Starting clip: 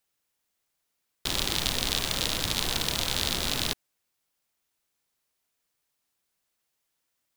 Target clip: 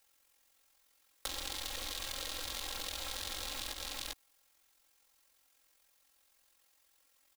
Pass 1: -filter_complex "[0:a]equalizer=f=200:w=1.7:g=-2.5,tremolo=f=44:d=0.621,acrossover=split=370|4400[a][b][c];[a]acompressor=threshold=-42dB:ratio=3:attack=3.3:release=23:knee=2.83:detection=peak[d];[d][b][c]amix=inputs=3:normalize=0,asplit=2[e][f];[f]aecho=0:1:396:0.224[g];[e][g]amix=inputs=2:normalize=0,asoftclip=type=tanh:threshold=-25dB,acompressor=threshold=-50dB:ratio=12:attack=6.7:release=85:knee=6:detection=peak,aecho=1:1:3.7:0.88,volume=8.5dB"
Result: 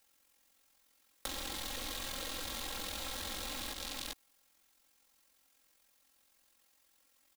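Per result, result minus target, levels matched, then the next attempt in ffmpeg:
soft clip: distortion +10 dB; 250 Hz band +6.5 dB
-filter_complex "[0:a]equalizer=f=200:w=1.7:g=-2.5,tremolo=f=44:d=0.621,acrossover=split=370|4400[a][b][c];[a]acompressor=threshold=-42dB:ratio=3:attack=3.3:release=23:knee=2.83:detection=peak[d];[d][b][c]amix=inputs=3:normalize=0,asplit=2[e][f];[f]aecho=0:1:396:0.224[g];[e][g]amix=inputs=2:normalize=0,asoftclip=type=tanh:threshold=-14dB,acompressor=threshold=-50dB:ratio=12:attack=6.7:release=85:knee=6:detection=peak,aecho=1:1:3.7:0.88,volume=8.5dB"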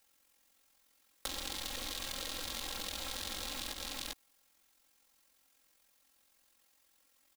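250 Hz band +4.5 dB
-filter_complex "[0:a]equalizer=f=200:w=1.7:g=-13.5,tremolo=f=44:d=0.621,acrossover=split=370|4400[a][b][c];[a]acompressor=threshold=-42dB:ratio=3:attack=3.3:release=23:knee=2.83:detection=peak[d];[d][b][c]amix=inputs=3:normalize=0,asplit=2[e][f];[f]aecho=0:1:396:0.224[g];[e][g]amix=inputs=2:normalize=0,asoftclip=type=tanh:threshold=-14dB,acompressor=threshold=-50dB:ratio=12:attack=6.7:release=85:knee=6:detection=peak,aecho=1:1:3.7:0.88,volume=8.5dB"

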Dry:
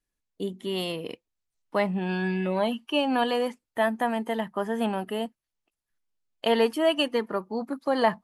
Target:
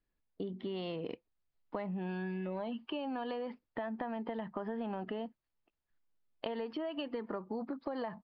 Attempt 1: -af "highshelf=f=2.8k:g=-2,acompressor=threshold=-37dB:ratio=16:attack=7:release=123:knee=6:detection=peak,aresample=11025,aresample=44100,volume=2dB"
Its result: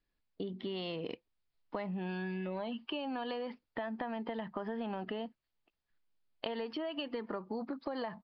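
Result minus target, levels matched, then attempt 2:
4000 Hz band +4.0 dB
-af "highshelf=f=2.8k:g=-12,acompressor=threshold=-37dB:ratio=16:attack=7:release=123:knee=6:detection=peak,aresample=11025,aresample=44100,volume=2dB"

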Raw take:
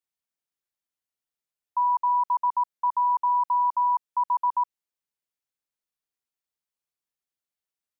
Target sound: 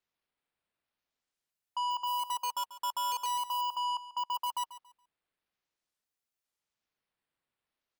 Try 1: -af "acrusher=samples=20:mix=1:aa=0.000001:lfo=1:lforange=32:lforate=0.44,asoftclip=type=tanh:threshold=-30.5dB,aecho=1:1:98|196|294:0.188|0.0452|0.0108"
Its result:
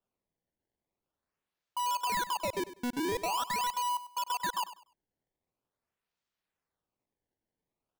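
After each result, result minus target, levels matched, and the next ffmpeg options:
decimation with a swept rate: distortion +18 dB; echo 42 ms early
-af "acrusher=samples=4:mix=1:aa=0.000001:lfo=1:lforange=6.4:lforate=0.44,asoftclip=type=tanh:threshold=-30.5dB,aecho=1:1:98|196|294:0.188|0.0452|0.0108"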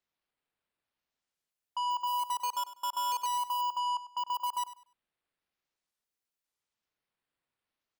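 echo 42 ms early
-af "acrusher=samples=4:mix=1:aa=0.000001:lfo=1:lforange=6.4:lforate=0.44,asoftclip=type=tanh:threshold=-30.5dB,aecho=1:1:140|280|420:0.188|0.0452|0.0108"

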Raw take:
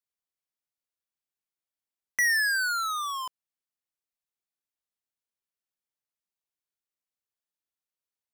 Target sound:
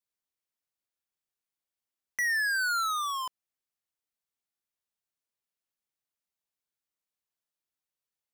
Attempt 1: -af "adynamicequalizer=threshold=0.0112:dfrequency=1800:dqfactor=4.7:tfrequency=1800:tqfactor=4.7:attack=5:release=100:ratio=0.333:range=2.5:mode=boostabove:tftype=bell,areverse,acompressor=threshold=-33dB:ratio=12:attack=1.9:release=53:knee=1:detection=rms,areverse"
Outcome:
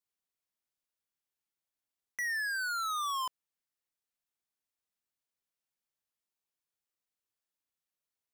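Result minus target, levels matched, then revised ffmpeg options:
compressor: peak gain reduction +6 dB
-af "adynamicequalizer=threshold=0.0112:dfrequency=1800:dqfactor=4.7:tfrequency=1800:tqfactor=4.7:attack=5:release=100:ratio=0.333:range=2.5:mode=boostabove:tftype=bell,areverse,acompressor=threshold=-26.5dB:ratio=12:attack=1.9:release=53:knee=1:detection=rms,areverse"

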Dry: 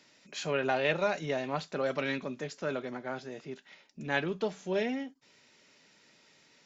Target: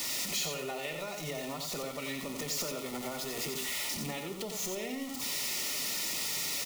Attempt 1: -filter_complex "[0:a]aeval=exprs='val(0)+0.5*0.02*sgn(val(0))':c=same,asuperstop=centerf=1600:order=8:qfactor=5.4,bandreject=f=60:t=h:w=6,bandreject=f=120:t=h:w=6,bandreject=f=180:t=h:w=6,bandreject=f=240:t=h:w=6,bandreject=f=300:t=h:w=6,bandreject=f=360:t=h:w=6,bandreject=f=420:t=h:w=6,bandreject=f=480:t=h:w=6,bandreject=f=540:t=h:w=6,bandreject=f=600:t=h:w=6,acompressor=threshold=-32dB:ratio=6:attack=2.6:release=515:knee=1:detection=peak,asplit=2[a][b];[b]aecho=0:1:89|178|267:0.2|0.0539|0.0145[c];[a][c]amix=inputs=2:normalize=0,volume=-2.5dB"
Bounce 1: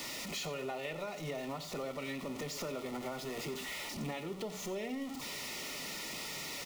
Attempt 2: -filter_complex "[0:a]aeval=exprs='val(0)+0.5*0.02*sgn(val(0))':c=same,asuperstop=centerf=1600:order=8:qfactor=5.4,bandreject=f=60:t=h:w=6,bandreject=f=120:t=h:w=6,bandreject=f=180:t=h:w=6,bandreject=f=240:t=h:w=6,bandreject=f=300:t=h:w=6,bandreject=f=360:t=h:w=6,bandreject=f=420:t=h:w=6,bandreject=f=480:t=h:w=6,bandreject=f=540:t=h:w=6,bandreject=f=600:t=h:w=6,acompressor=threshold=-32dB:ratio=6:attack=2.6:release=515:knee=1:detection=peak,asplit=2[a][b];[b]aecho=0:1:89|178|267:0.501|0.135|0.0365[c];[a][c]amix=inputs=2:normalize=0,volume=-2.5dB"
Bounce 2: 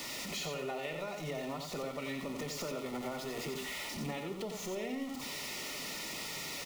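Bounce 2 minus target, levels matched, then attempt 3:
8000 Hz band -4.5 dB
-filter_complex "[0:a]aeval=exprs='val(0)+0.5*0.02*sgn(val(0))':c=same,asuperstop=centerf=1600:order=8:qfactor=5.4,bandreject=f=60:t=h:w=6,bandreject=f=120:t=h:w=6,bandreject=f=180:t=h:w=6,bandreject=f=240:t=h:w=6,bandreject=f=300:t=h:w=6,bandreject=f=360:t=h:w=6,bandreject=f=420:t=h:w=6,bandreject=f=480:t=h:w=6,bandreject=f=540:t=h:w=6,bandreject=f=600:t=h:w=6,acompressor=threshold=-32dB:ratio=6:attack=2.6:release=515:knee=1:detection=peak,highshelf=f=4k:g=12,asplit=2[a][b];[b]aecho=0:1:89|178|267:0.501|0.135|0.0365[c];[a][c]amix=inputs=2:normalize=0,volume=-2.5dB"

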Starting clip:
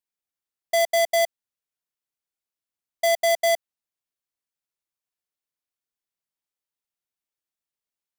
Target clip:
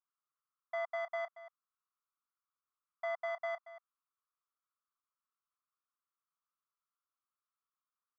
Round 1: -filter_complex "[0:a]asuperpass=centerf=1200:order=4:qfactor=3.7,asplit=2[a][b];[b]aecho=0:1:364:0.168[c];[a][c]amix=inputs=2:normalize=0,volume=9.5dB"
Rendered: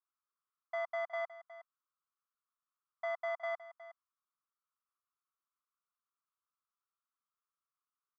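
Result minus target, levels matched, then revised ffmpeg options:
echo 0.134 s late
-filter_complex "[0:a]asuperpass=centerf=1200:order=4:qfactor=3.7,asplit=2[a][b];[b]aecho=0:1:230:0.168[c];[a][c]amix=inputs=2:normalize=0,volume=9.5dB"

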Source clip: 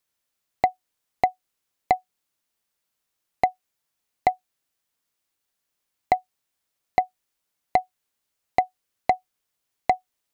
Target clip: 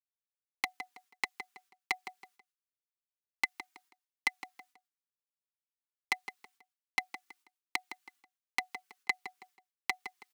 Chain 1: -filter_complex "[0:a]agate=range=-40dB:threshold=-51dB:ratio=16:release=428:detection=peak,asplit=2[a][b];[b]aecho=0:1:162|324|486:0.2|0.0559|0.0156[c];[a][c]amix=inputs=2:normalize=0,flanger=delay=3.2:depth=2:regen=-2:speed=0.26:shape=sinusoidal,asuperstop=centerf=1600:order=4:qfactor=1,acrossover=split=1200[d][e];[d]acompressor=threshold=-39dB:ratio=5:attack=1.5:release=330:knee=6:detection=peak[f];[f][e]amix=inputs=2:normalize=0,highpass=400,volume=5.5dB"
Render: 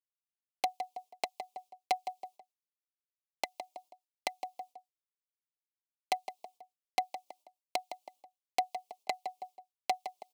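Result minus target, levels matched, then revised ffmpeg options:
500 Hz band +15.5 dB
-filter_complex "[0:a]agate=range=-40dB:threshold=-51dB:ratio=16:release=428:detection=peak,asplit=2[a][b];[b]aecho=0:1:162|324|486:0.2|0.0559|0.0156[c];[a][c]amix=inputs=2:normalize=0,flanger=delay=3.2:depth=2:regen=-2:speed=0.26:shape=sinusoidal,asuperstop=centerf=620:order=4:qfactor=1,acrossover=split=1200[d][e];[d]acompressor=threshold=-39dB:ratio=5:attack=1.5:release=330:knee=6:detection=peak[f];[f][e]amix=inputs=2:normalize=0,highpass=400,volume=5.5dB"

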